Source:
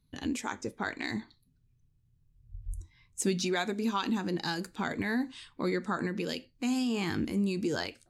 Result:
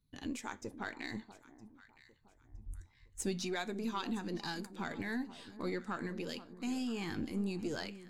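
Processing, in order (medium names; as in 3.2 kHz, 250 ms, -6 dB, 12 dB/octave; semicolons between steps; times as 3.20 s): partial rectifier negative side -3 dB; on a send: echo whose repeats swap between lows and highs 482 ms, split 1.1 kHz, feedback 55%, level -13 dB; on the sum: trim -6 dB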